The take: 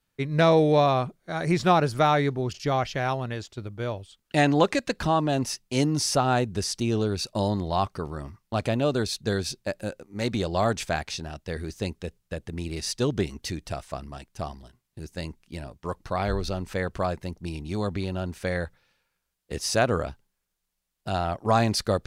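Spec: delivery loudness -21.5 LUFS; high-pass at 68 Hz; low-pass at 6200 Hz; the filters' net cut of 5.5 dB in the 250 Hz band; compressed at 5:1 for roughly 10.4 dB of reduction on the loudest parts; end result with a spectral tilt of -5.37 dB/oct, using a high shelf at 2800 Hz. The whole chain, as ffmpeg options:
-af "highpass=68,lowpass=6.2k,equalizer=f=250:t=o:g=-8,highshelf=f=2.8k:g=-6,acompressor=threshold=-29dB:ratio=5,volume=14dB"

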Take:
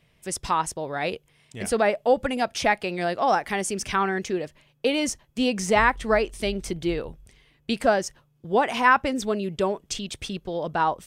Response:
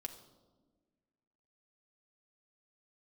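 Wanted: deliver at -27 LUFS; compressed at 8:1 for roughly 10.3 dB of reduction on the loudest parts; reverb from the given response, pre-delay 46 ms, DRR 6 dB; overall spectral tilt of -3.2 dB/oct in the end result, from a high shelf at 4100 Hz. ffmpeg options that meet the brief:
-filter_complex "[0:a]highshelf=f=4.1k:g=5.5,acompressor=threshold=-24dB:ratio=8,asplit=2[a][b];[1:a]atrim=start_sample=2205,adelay=46[c];[b][c]afir=irnorm=-1:irlink=0,volume=-3dB[d];[a][d]amix=inputs=2:normalize=0,volume=1.5dB"

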